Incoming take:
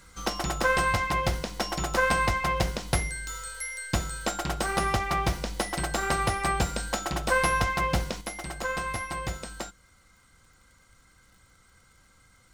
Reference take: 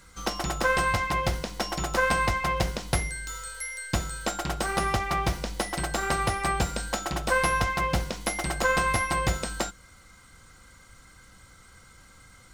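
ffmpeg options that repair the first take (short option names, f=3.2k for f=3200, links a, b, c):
-af "adeclick=t=4,asetnsamples=n=441:p=0,asendcmd='8.21 volume volume 7dB',volume=0dB"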